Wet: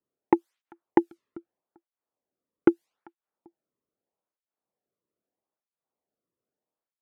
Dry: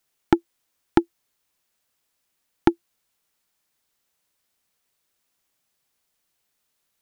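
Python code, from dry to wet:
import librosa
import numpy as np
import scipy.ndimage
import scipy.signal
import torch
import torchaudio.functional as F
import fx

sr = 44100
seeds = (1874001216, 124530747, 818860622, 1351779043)

y = fx.echo_feedback(x, sr, ms=393, feedback_pct=29, wet_db=-23.5)
y = fx.env_lowpass(y, sr, base_hz=610.0, full_db=-22.0)
y = fx.flanger_cancel(y, sr, hz=0.79, depth_ms=1.4)
y = y * librosa.db_to_amplitude(1.0)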